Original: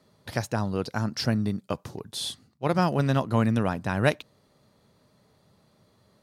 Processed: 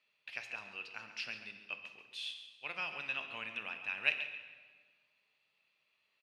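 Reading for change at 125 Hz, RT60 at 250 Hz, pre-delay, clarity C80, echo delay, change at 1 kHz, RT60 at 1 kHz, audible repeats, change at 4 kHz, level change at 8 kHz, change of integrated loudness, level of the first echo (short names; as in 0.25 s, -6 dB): -38.5 dB, 1.7 s, 6 ms, 8.0 dB, 0.138 s, -19.0 dB, 1.5 s, 1, -7.5 dB, under -20 dB, -12.5 dB, -12.5 dB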